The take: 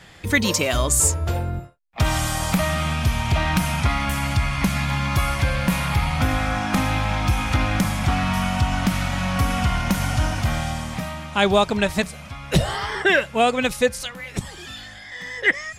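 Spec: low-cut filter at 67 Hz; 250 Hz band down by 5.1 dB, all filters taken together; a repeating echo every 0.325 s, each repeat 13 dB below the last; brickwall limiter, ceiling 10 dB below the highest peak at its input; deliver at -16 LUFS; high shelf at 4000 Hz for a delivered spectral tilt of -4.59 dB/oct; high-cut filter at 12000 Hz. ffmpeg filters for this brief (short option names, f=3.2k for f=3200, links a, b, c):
-af "highpass=67,lowpass=12k,equalizer=f=250:t=o:g=-7.5,highshelf=f=4k:g=-7.5,alimiter=limit=-17dB:level=0:latency=1,aecho=1:1:325|650|975:0.224|0.0493|0.0108,volume=11dB"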